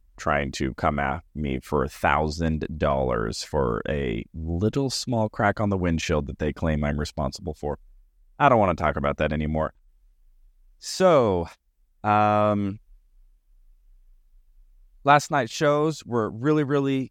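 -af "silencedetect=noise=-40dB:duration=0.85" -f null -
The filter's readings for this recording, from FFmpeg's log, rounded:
silence_start: 9.69
silence_end: 10.83 | silence_duration: 1.13
silence_start: 12.77
silence_end: 15.05 | silence_duration: 2.28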